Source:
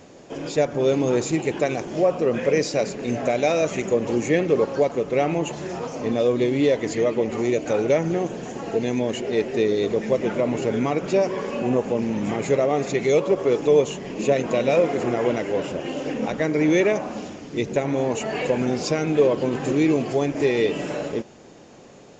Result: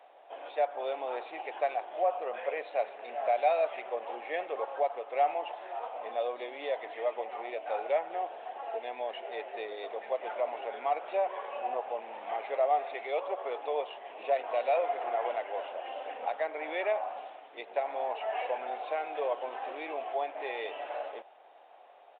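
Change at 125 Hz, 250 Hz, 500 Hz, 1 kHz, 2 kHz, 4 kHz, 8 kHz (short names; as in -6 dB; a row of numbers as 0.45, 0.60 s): under -40 dB, -29.5 dB, -12.0 dB, -1.0 dB, -10.0 dB, -13.0 dB, n/a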